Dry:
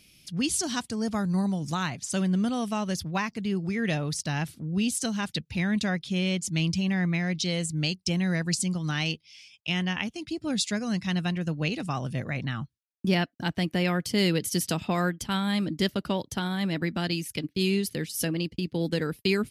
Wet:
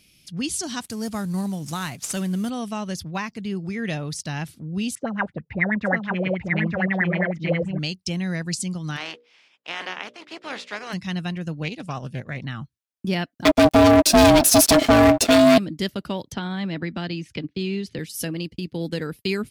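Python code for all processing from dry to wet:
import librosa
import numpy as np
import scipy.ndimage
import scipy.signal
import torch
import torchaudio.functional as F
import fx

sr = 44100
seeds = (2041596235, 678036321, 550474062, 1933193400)

y = fx.chain(x, sr, fx.cvsd(bps=64000),
    fx.high_shelf(hz=8200.0, db=11.5), at=(0.82, 2.5))
y = fx.chain(y, sr, fx.filter_lfo_lowpass(shape='sine', hz=9.3, low_hz=480.0, high_hz=2100.0, q=7.2),
    fx.echo_single(ms=892, db=-3.0), at=(4.95, 7.79))
y = fx.spec_flatten(y, sr, power=0.42, at=(8.96, 10.92), fade=0.02)
y = fx.bandpass_edges(y, sr, low_hz=370.0, high_hz=2600.0, at=(8.96, 10.92), fade=0.02)
y = fx.hum_notches(y, sr, base_hz=60, count=10, at=(8.96, 10.92), fade=0.02)
y = fx.chain(y, sr, fx.transient(attack_db=0, sustain_db=-10),
    fx.doppler_dist(depth_ms=0.17), at=(11.63, 12.42))
y = fx.chain(y, sr, fx.comb(ms=5.4, depth=0.97),
    fx.leveller(passes=5),
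    fx.ring_mod(carrier_hz=460.0), at=(13.45, 15.58))
y = fx.chain(y, sr, fx.air_absorb(metres=130.0),
    fx.band_squash(depth_pct=70), at=(16.32, 17.99))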